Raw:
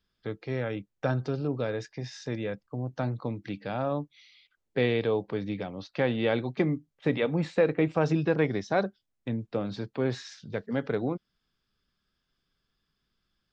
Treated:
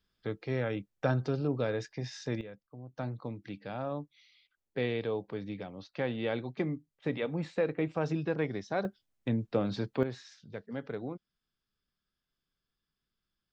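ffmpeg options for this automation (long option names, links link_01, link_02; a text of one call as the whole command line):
ffmpeg -i in.wav -af "asetnsamples=nb_out_samples=441:pad=0,asendcmd='2.41 volume volume -13.5dB;2.98 volume volume -6.5dB;8.85 volume volume 1dB;10.03 volume volume -9dB',volume=-1dB" out.wav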